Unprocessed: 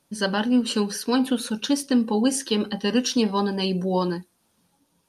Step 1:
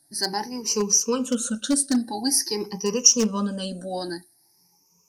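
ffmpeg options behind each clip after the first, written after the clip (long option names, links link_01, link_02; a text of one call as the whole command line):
ffmpeg -i in.wav -af "afftfilt=real='re*pow(10,20/40*sin(2*PI*(0.79*log(max(b,1)*sr/1024/100)/log(2)-(0.48)*(pts-256)/sr)))':imag='im*pow(10,20/40*sin(2*PI*(0.79*log(max(b,1)*sr/1024/100)/log(2)-(0.48)*(pts-256)/sr)))':win_size=1024:overlap=0.75,aeval=exprs='0.422*(abs(mod(val(0)/0.422+3,4)-2)-1)':channel_layout=same,highshelf=frequency=4400:width_type=q:width=3:gain=9,volume=-7dB" out.wav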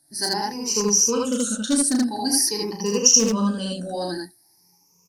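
ffmpeg -i in.wav -af "aecho=1:1:34.99|78.72:0.501|1,volume=-1dB" out.wav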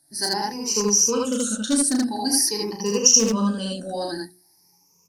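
ffmpeg -i in.wav -af "bandreject=frequency=60:width_type=h:width=6,bandreject=frequency=120:width_type=h:width=6,bandreject=frequency=180:width_type=h:width=6,bandreject=frequency=240:width_type=h:width=6,bandreject=frequency=300:width_type=h:width=6,bandreject=frequency=360:width_type=h:width=6" out.wav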